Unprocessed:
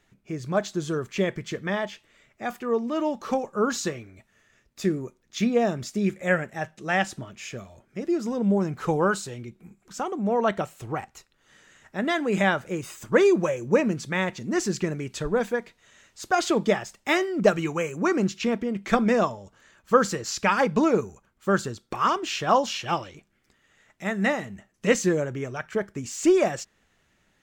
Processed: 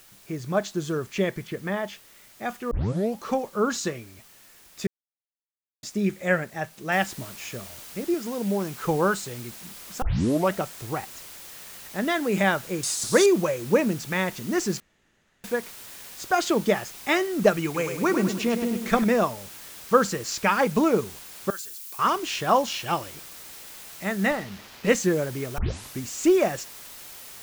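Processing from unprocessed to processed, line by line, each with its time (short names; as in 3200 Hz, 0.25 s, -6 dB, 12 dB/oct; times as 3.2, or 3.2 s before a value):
1.47–1.88 air absorption 280 m
2.71 tape start 0.48 s
4.87–5.83 mute
6.92 noise floor step -53 dB -43 dB
8.14–8.84 low shelf 270 Hz -7.5 dB
10.02 tape start 0.52 s
12.83–13.26 band shelf 6300 Hz +15 dB
14.8–15.44 room tone
17.64–19.04 feedback echo 0.103 s, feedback 46%, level -7.5 dB
21.5–21.99 differentiator
24.31–24.89 running maximum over 5 samples
25.58 tape start 0.43 s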